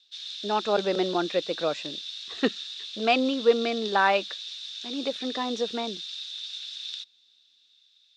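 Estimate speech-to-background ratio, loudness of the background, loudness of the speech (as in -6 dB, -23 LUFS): 8.0 dB, -35.0 LUFS, -27.0 LUFS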